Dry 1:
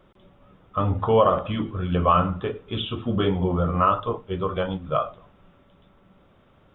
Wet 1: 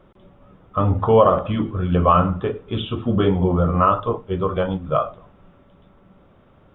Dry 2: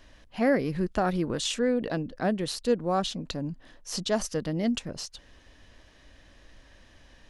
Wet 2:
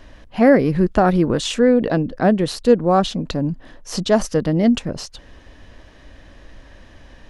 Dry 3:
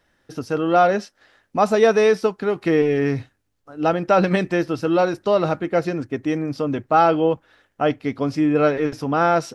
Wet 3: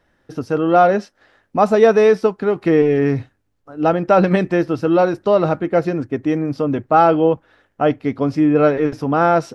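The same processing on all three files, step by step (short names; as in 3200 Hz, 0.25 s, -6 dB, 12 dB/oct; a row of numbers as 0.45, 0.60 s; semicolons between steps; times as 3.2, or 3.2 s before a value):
high shelf 2200 Hz -8.5 dB; normalise peaks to -1.5 dBFS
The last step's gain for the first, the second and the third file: +5.0, +12.0, +4.0 dB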